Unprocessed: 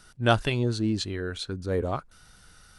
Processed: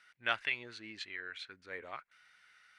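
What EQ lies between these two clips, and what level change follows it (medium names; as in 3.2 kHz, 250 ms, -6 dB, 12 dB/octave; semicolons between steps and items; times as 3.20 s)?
band-pass filter 2.1 kHz, Q 4.1; +4.0 dB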